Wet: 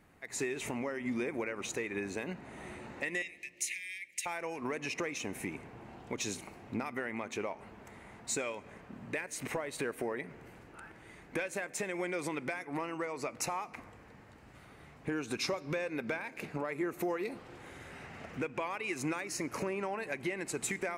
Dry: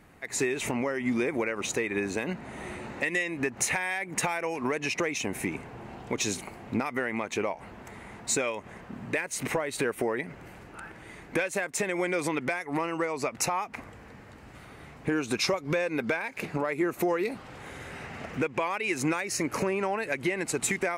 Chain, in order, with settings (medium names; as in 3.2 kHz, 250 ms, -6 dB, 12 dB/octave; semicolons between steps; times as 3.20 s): 3.22–4.26 s: steep high-pass 2 kHz 72 dB/octave; on a send: reverberation RT60 2.1 s, pre-delay 3 ms, DRR 17.5 dB; on the sum: trim -7.5 dB